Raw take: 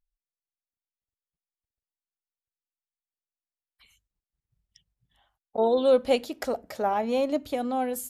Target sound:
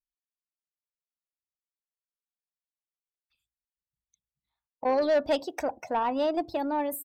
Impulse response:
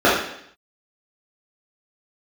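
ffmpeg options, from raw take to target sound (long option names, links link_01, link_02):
-af "afftdn=noise_reduction=20:noise_floor=-44,asetrate=50715,aresample=44100,asoftclip=type=tanh:threshold=-18.5dB"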